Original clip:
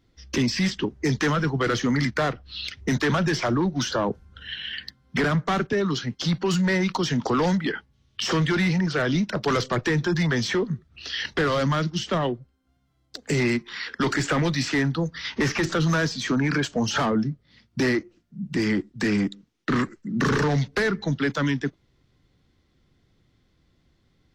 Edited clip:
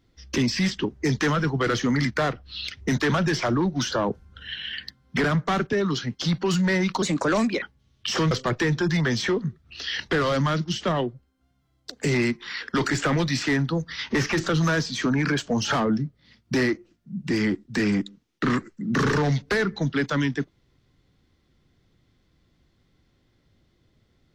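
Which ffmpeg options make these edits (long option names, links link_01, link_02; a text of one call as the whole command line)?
ffmpeg -i in.wav -filter_complex "[0:a]asplit=4[link_01][link_02][link_03][link_04];[link_01]atrim=end=7.024[link_05];[link_02]atrim=start=7.02:end=7.76,asetpts=PTS-STARTPTS,asetrate=54243,aresample=44100[link_06];[link_03]atrim=start=7.756:end=8.452[link_07];[link_04]atrim=start=9.568[link_08];[link_05][link_06]acrossfade=duration=0.004:curve1=hsin:curve2=hsin[link_09];[link_09][link_07]acrossfade=duration=0.004:curve1=hsin:curve2=hsin[link_10];[link_10][link_08]acrossfade=duration=0.004:curve1=hsin:curve2=hsin" out.wav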